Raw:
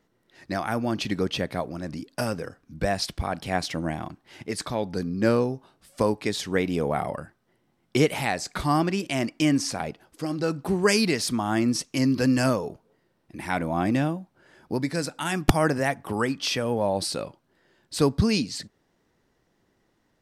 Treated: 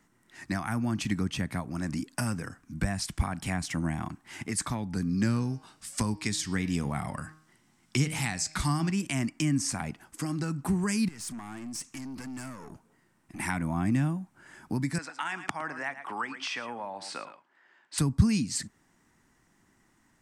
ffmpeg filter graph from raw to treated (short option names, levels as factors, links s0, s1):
-filter_complex "[0:a]asettb=1/sr,asplit=3[s0][s1][s2];[s0]atrim=end=5.094[s3];[s1]atrim=start=5.09:end=8.91,asetpts=PTS-STARTPTS,afade=t=in:d=0.004:c=qsin,afade=t=out:st=3.816:d=0.004:c=qsin,equalizer=f=4800:t=o:w=1.7:g=9,bandreject=f=156.1:t=h:w=4,bandreject=f=312.2:t=h:w=4,bandreject=f=468.3:t=h:w=4,bandreject=f=624.4:t=h:w=4,bandreject=f=780.5:t=h:w=4,bandreject=f=936.6:t=h:w=4,bandreject=f=1092.7:t=h:w=4,bandreject=f=1248.8:t=h:w=4,bandreject=f=1404.9:t=h:w=4,bandreject=f=1561:t=h:w=4,bandreject=f=1717.1:t=h:w=4,bandreject=f=1873.2:t=h:w=4,bandreject=f=2029.3:t=h:w=4,bandreject=f=2185.4:t=h:w=4,bandreject=f=2341.5:t=h:w=4,bandreject=f=2497.6:t=h:w=4,bandreject=f=2653.7:t=h:w=4,bandreject=f=2809.8:t=h:w=4,bandreject=f=2965.9:t=h:w=4,bandreject=f=3122:t=h:w=4,bandreject=f=3278.1:t=h:w=4,bandreject=f=3434.2:t=h:w=4,bandreject=f=3590.3:t=h:w=4,bandreject=f=3746.4:t=h:w=4,bandreject=f=3902.5:t=h:w=4,bandreject=f=4058.6:t=h:w=4,bandreject=f=4214.7:t=h:w=4,bandreject=f=4370.8:t=h:w=4,bandreject=f=4526.9:t=h:w=4,bandreject=f=4683:t=h:w=4,bandreject=f=4839.1:t=h:w=4,bandreject=f=4995.2:t=h:w=4,bandreject=f=5151.3:t=h:w=4,bandreject=f=5307.4:t=h:w=4,bandreject=f=5463.5:t=h:w=4,bandreject=f=5619.6:t=h:w=4[s4];[s2]atrim=start=8.906[s5];[s3][s4]acrossfade=d=0.004:c1=hsin:c2=qsin[s6];[s6][s5]acrossfade=d=0.004:c1=qsin:c2=hsin,asettb=1/sr,asplit=3[s7][s8][s9];[s7]atrim=end=11.084[s10];[s8]atrim=start=11.08:end=13.4,asetpts=PTS-STARTPTS,afade=t=in:d=0.004:c=qsin,afade=t=out:st=2.316:d=0.004:c=qsin,acompressor=threshold=0.02:ratio=20:attack=3.2:release=140:knee=1:detection=peak,aeval=exprs='(tanh(89.1*val(0)+0.3)-tanh(0.3))/89.1':c=same[s11];[s9]atrim=start=13.396[s12];[s10][s11]acrossfade=d=0.004:c1=hsin:c2=qsin[s13];[s13][s12]acrossfade=d=0.004:c1=qsin:c2=hsin,asettb=1/sr,asplit=3[s14][s15][s16];[s14]atrim=end=14.984[s17];[s15]atrim=start=14.98:end=17.98,asetpts=PTS-STARTPTS,afade=t=in:d=0.004:c=qsin,afade=t=out:st=2.996:d=0.004:c=qsin,highpass=570,lowpass=3100,aecho=1:1:110:0.2,atrim=end_sample=132300[s18];[s16]atrim=start=17.976[s19];[s17][s18]acrossfade=d=0.004:c1=hsin:c2=qsin[s20];[s20][s19]acrossfade=d=0.004:c1=qsin:c2=hsin,acrossover=split=190[s21][s22];[s22]acompressor=threshold=0.02:ratio=6[s23];[s21][s23]amix=inputs=2:normalize=0,equalizer=f=250:t=o:w=1:g=4,equalizer=f=500:t=o:w=1:g=-11,equalizer=f=1000:t=o:w=1:g=4,equalizer=f=2000:t=o:w=1:g=4,equalizer=f=4000:t=o:w=1:g=-6,equalizer=f=8000:t=o:w=1:g=11,volume=1.26"